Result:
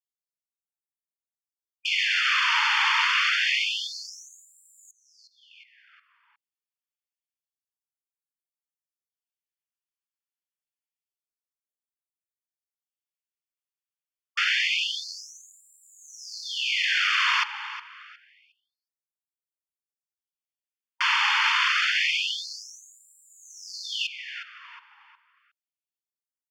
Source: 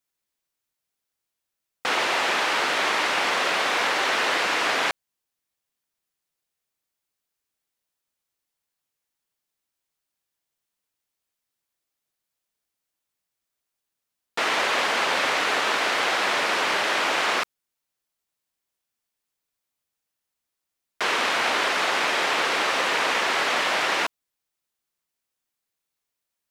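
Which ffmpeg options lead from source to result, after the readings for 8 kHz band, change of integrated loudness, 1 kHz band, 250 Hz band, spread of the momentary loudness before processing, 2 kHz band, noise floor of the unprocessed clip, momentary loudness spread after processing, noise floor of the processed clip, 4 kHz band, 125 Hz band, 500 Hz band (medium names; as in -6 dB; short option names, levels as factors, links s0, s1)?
-5.5 dB, -0.5 dB, -7.0 dB, under -40 dB, 4 LU, -1.5 dB, -84 dBFS, 18 LU, under -85 dBFS, 0.0 dB, under -40 dB, under -40 dB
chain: -filter_complex "[0:a]afwtdn=0.0141,asuperstop=centerf=3900:order=20:qfactor=7.9,equalizer=f=2800:w=1.9:g=5,asplit=2[s0][s1];[s1]adelay=362,lowpass=f=3100:p=1,volume=0.251,asplit=2[s2][s3];[s3]adelay=362,lowpass=f=3100:p=1,volume=0.38,asplit=2[s4][s5];[s5]adelay=362,lowpass=f=3100:p=1,volume=0.38,asplit=2[s6][s7];[s7]adelay=362,lowpass=f=3100:p=1,volume=0.38[s8];[s2][s4][s6][s8]amix=inputs=4:normalize=0[s9];[s0][s9]amix=inputs=2:normalize=0,afftfilt=real='re*gte(b*sr/1024,810*pow(7200/810,0.5+0.5*sin(2*PI*0.27*pts/sr)))':imag='im*gte(b*sr/1024,810*pow(7200/810,0.5+0.5*sin(2*PI*0.27*pts/sr)))':win_size=1024:overlap=0.75"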